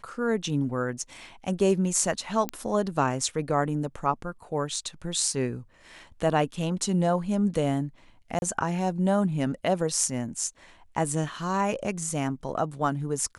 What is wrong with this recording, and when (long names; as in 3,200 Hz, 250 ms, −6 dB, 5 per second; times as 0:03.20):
0:02.49: click −14 dBFS
0:08.39–0:08.42: drop-out 31 ms